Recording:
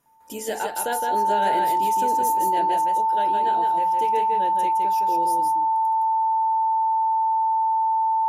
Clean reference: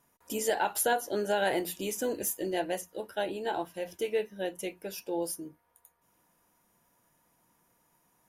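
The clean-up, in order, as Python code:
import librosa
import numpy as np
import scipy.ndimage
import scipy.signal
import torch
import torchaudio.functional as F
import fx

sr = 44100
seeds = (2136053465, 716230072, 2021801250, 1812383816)

y = fx.notch(x, sr, hz=890.0, q=30.0)
y = fx.fix_echo_inverse(y, sr, delay_ms=164, level_db=-4.0)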